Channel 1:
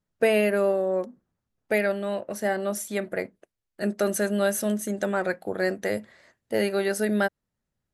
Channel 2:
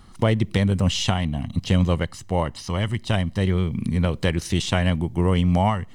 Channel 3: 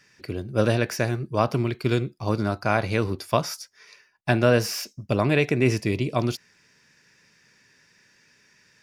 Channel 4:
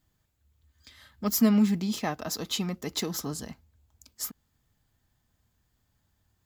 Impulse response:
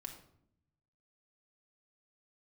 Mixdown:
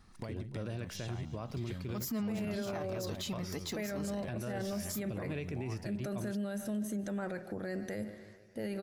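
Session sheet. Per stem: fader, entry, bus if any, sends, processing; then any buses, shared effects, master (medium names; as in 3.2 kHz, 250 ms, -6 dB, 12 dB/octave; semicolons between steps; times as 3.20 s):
-17.0 dB, 2.05 s, send -8 dB, echo send -19.5 dB, de-esser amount 60%; tone controls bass +12 dB, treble 0 dB; level rider gain up to 10.5 dB
-12.5 dB, 0.00 s, no send, echo send -14.5 dB, band-stop 3 kHz, Q 8.8; compression 6:1, threshold -28 dBFS, peak gain reduction 13 dB
-15.5 dB, 0.00 s, no send, no echo send, bass shelf 230 Hz +8 dB
-2.5 dB, 0.70 s, no send, no echo send, none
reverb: on, RT60 0.70 s, pre-delay 4 ms
echo: feedback delay 147 ms, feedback 58%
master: peak limiter -29.5 dBFS, peak gain reduction 14.5 dB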